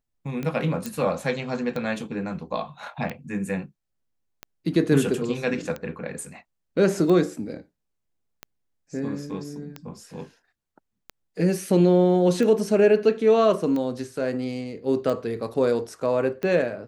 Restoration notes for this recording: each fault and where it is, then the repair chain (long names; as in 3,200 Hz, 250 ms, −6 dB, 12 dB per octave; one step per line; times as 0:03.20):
scratch tick 45 rpm −18 dBFS
0:00.86: click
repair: click removal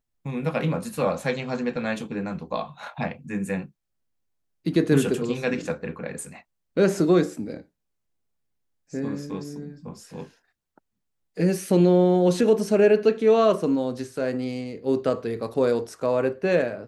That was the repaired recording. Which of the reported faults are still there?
none of them is left